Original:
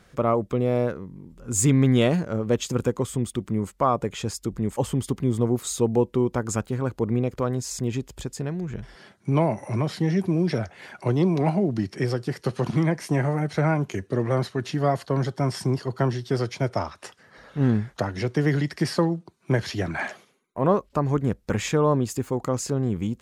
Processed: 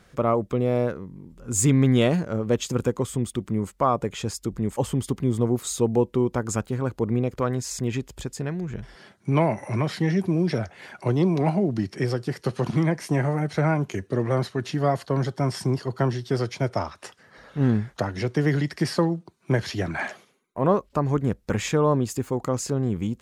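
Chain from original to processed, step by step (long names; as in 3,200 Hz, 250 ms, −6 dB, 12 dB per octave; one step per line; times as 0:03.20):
0:07.39–0:10.12: dynamic equaliser 1,900 Hz, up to +6 dB, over −45 dBFS, Q 1.1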